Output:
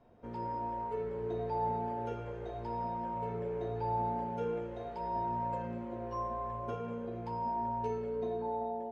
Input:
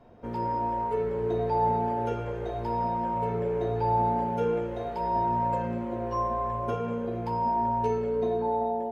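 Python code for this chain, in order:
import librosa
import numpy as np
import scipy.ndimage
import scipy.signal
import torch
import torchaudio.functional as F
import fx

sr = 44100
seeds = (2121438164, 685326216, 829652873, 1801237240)

y = scipy.signal.sosfilt(scipy.signal.butter(2, 8500.0, 'lowpass', fs=sr, output='sos'), x)
y = y * 10.0 ** (-8.5 / 20.0)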